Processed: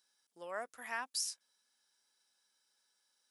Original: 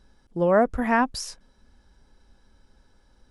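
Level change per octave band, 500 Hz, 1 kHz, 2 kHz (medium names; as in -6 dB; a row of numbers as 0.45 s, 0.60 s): -24.5 dB, -19.5 dB, -14.0 dB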